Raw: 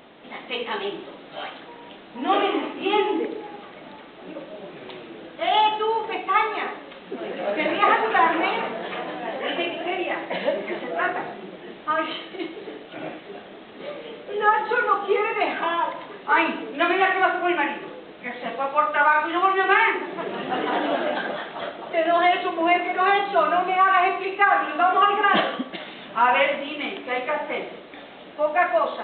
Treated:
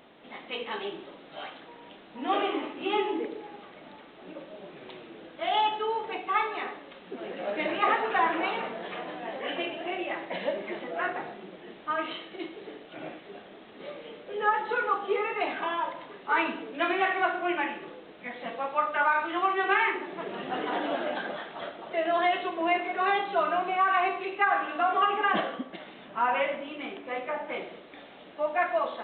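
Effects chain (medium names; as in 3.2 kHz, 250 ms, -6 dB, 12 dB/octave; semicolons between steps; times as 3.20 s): 25.32–27.49 s: treble shelf 3 kHz -9.5 dB; trim -6.5 dB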